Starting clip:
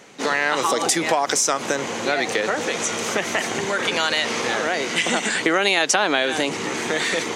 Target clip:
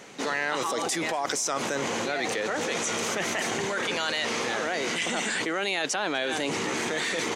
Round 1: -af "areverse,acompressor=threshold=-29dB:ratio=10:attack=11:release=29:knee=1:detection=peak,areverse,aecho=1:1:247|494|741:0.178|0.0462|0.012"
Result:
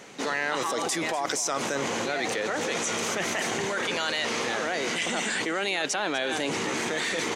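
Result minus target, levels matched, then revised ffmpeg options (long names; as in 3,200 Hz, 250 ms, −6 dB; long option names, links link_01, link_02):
echo-to-direct +9.5 dB
-af "areverse,acompressor=threshold=-29dB:ratio=10:attack=11:release=29:knee=1:detection=peak,areverse,aecho=1:1:247|494:0.0596|0.0155"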